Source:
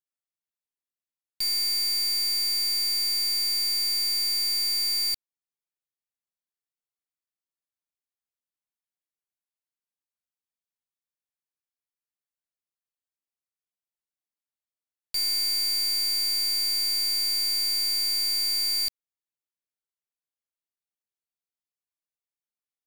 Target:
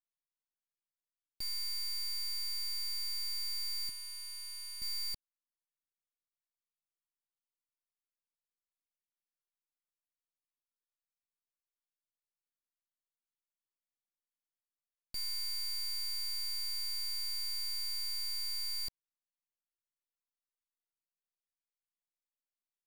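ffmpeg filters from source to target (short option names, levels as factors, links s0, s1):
-filter_complex "[0:a]lowshelf=f=770:t=q:w=3:g=-8.5,asettb=1/sr,asplit=3[s0][s1][s2];[s0]atrim=end=3.894[s3];[s1]atrim=start=3.89:end=4.82,asetpts=PTS-STARTPTS,afade=t=in:d=0.004:c=qsin,afade=t=out:st=0.926:d=0.004:c=qsin,acrossover=split=190|5600[s4][s5][s6];[s4]acompressor=threshold=0.00178:ratio=4[s7];[s5]acompressor=threshold=0.0224:ratio=4[s8];[s6]acompressor=threshold=0.00562:ratio=4[s9];[s7][s8][s9]amix=inputs=3:normalize=0[s10];[s2]atrim=start=4.816[s11];[s3][s10]acrossfade=d=0.004:c1=hsin:c2=qsin[s12];[s12][s11]acrossfade=d=0.004:c1=qsin:c2=hsin,aeval=exprs='max(val(0),0)':c=same,volume=0.398"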